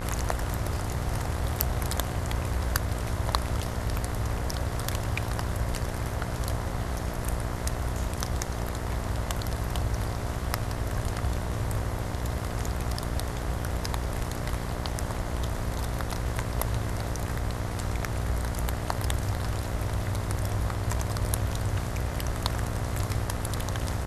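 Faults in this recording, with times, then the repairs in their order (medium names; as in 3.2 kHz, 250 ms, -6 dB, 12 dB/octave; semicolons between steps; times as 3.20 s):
buzz 60 Hz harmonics 35 -34 dBFS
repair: de-hum 60 Hz, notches 35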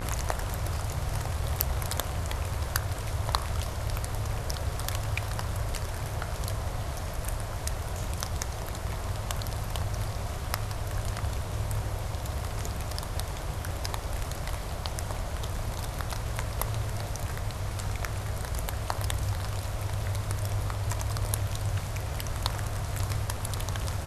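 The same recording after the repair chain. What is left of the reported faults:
nothing left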